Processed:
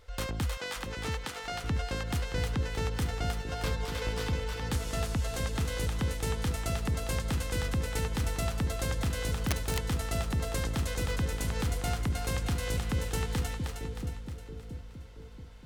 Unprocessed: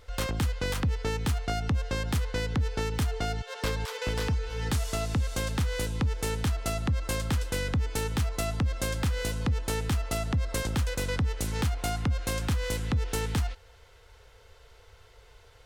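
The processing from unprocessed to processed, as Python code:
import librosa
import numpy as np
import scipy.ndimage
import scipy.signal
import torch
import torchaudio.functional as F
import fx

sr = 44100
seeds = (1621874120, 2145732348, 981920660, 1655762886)

y = fx.weighting(x, sr, curve='A', at=(0.57, 1.64))
y = fx.echo_split(y, sr, split_hz=520.0, low_ms=677, high_ms=312, feedback_pct=52, wet_db=-4.0)
y = fx.overflow_wrap(y, sr, gain_db=18.0, at=(9.38, 9.88))
y = F.gain(torch.from_numpy(y), -4.0).numpy()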